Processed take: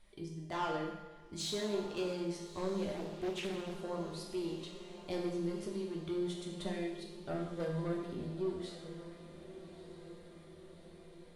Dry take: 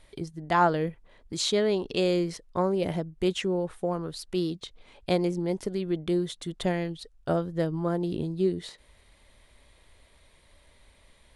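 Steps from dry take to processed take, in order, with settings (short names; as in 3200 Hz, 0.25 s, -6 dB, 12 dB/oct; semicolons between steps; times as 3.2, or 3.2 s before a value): 7.48–7.93 comb 1.9 ms, depth 67%; soft clip -21.5 dBFS, distortion -13 dB; resonator 200 Hz, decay 1.1 s, mix 80%; flange 0.26 Hz, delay 5.6 ms, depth 8 ms, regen -38%; diffused feedback echo 1.257 s, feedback 60%, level -13 dB; two-slope reverb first 0.9 s, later 2.8 s, from -20 dB, DRR 1 dB; 2.96–3.81 Doppler distortion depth 0.41 ms; gain +5.5 dB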